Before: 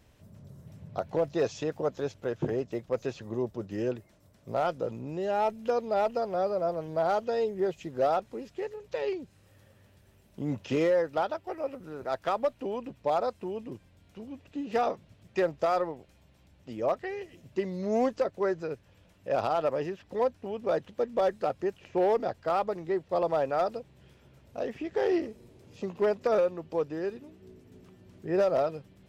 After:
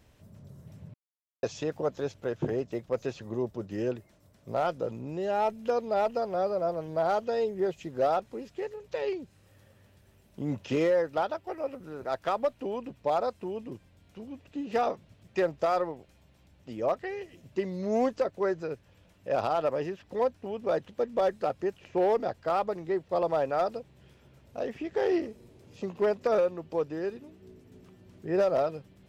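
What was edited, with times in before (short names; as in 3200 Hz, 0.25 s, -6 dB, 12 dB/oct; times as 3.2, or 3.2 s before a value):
0.94–1.43 mute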